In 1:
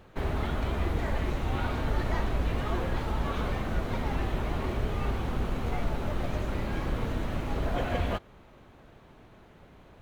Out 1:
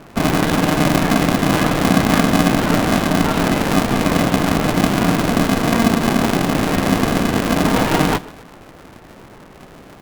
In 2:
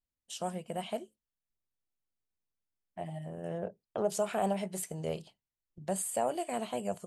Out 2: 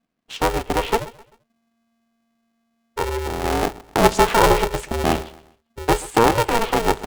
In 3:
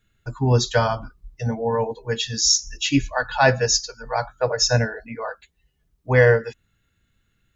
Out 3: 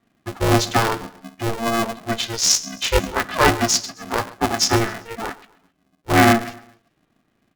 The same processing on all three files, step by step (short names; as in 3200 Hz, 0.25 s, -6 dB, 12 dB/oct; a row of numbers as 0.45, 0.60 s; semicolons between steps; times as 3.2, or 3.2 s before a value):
low-pass opened by the level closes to 2500 Hz, open at -18 dBFS; feedback echo 0.13 s, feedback 37%, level -19.5 dB; polarity switched at an audio rate 230 Hz; normalise peaks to -3 dBFS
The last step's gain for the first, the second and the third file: +13.0, +16.0, +1.0 dB